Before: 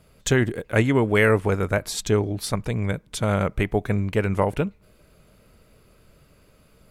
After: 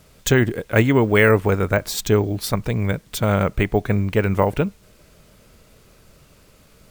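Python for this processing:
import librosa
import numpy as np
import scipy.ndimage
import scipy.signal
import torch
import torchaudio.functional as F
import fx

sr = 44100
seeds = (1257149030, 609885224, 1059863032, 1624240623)

y = fx.quant_dither(x, sr, seeds[0], bits=10, dither='triangular')
y = np.repeat(scipy.signal.resample_poly(y, 1, 2), 2)[:len(y)]
y = y * librosa.db_to_amplitude(3.5)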